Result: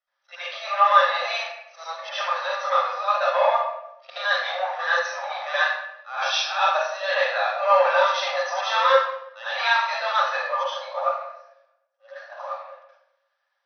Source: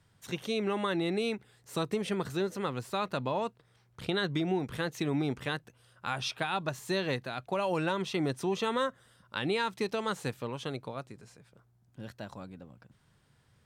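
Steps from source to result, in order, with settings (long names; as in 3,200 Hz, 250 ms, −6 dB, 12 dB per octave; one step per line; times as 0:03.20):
noise reduction from a noise print of the clip's start 8 dB
leveller curve on the samples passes 2
volume swells 131 ms
linear-phase brick-wall band-pass 510–6,200 Hz
hollow resonant body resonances 1,200/1,700 Hz, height 13 dB, ringing for 55 ms
convolution reverb RT60 0.85 s, pre-delay 69 ms, DRR −13.5 dB
level −9 dB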